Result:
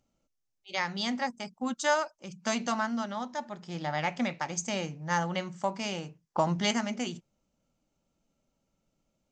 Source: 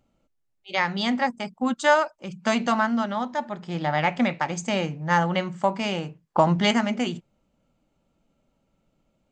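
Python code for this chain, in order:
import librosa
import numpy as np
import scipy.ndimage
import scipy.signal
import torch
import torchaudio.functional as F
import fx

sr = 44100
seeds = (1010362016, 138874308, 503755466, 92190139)

y = fx.peak_eq(x, sr, hz=5900.0, db=11.5, octaves=0.77)
y = y * 10.0 ** (-8.0 / 20.0)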